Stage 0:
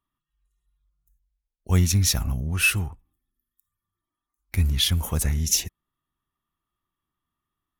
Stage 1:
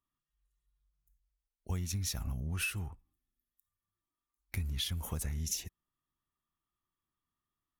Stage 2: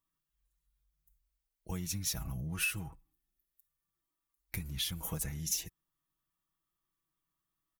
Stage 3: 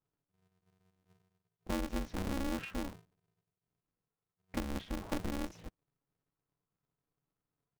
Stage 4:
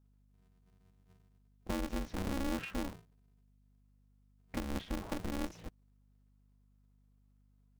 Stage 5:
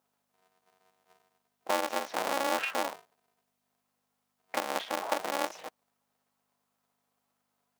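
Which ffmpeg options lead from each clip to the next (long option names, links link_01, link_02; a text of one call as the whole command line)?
ffmpeg -i in.wav -af "acompressor=threshold=-25dB:ratio=10,volume=-7dB" out.wav
ffmpeg -i in.wav -af "highshelf=frequency=12000:gain=8.5,aecho=1:1:6.2:0.65,volume=-1dB" out.wav
ffmpeg -i in.wav -af "adynamicsmooth=sensitivity=0.5:basefreq=920,aeval=exprs='val(0)*sgn(sin(2*PI*140*n/s))':channel_layout=same,volume=3.5dB" out.wav
ffmpeg -i in.wav -af "alimiter=level_in=5.5dB:limit=-24dB:level=0:latency=1:release=192,volume=-5.5dB,aeval=exprs='val(0)+0.000398*(sin(2*PI*50*n/s)+sin(2*PI*2*50*n/s)/2+sin(2*PI*3*50*n/s)/3+sin(2*PI*4*50*n/s)/4+sin(2*PI*5*50*n/s)/5)':channel_layout=same,volume=1.5dB" out.wav
ffmpeg -i in.wav -filter_complex "[0:a]asplit=2[link_01][link_02];[link_02]aeval=exprs='val(0)*gte(abs(val(0)),0.00422)':channel_layout=same,volume=-12dB[link_03];[link_01][link_03]amix=inputs=2:normalize=0,highpass=frequency=690:width_type=q:width=1.7,volume=8.5dB" out.wav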